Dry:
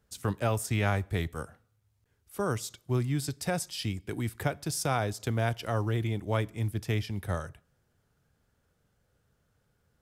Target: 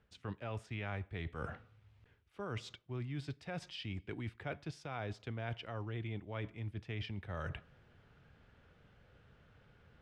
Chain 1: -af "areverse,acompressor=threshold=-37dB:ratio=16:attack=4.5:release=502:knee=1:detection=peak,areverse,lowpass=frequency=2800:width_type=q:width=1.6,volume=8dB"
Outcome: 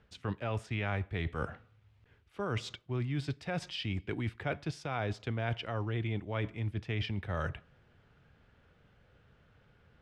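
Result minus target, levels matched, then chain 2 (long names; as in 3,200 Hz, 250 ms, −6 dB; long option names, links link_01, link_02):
downward compressor: peak gain reduction −7 dB
-af "areverse,acompressor=threshold=-44.5dB:ratio=16:attack=4.5:release=502:knee=1:detection=peak,areverse,lowpass=frequency=2800:width_type=q:width=1.6,volume=8dB"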